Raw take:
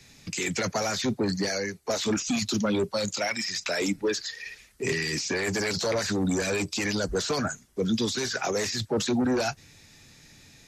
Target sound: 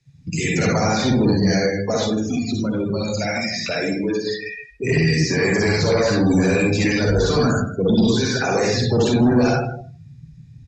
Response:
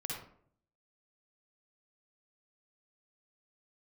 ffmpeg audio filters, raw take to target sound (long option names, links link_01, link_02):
-filter_complex "[0:a]equalizer=frequency=69:width=0.33:gain=5.5[link_01];[1:a]atrim=start_sample=2205[link_02];[link_01][link_02]afir=irnorm=-1:irlink=0,asettb=1/sr,asplit=3[link_03][link_04][link_05];[link_03]atrim=end=2.034[link_06];[link_04]atrim=start=2.03:end=4.27,asetpts=PTS-STARTPTS,afade=type=in:duration=0.004:curve=qsin,afade=type=out:start_time=2.236:duration=0.004:curve=qsin,acompressor=threshold=-27dB:ratio=6[link_07];[link_05]atrim=start=4.266[link_08];[link_06][link_07]acrossfade=duration=0.004:curve1=hsin:curve2=qsin[link_09];[link_09][link_08]acrossfade=duration=0.004:curve1=qsin:curve2=hsin,asoftclip=type=tanh:threshold=-18.5dB,aecho=1:1:158|316|474:0.282|0.0705|0.0176,afftdn=noise_reduction=25:noise_floor=-37,lowpass=9500,volume=8.5dB"